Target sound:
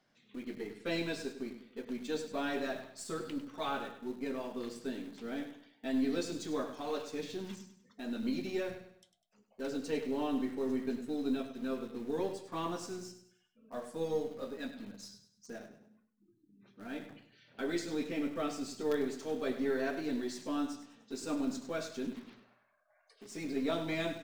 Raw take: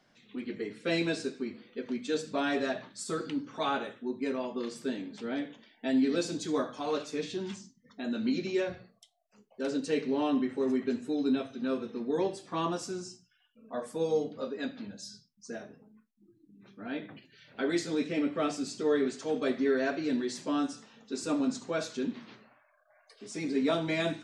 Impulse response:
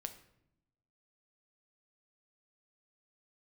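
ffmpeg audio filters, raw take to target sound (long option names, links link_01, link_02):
-filter_complex "[0:a]asplit=2[link_01][link_02];[link_02]acrusher=bits=4:dc=4:mix=0:aa=0.000001,volume=-9dB[link_03];[link_01][link_03]amix=inputs=2:normalize=0,aecho=1:1:100|200|300|400:0.266|0.101|0.0384|0.0146,volume=-7dB"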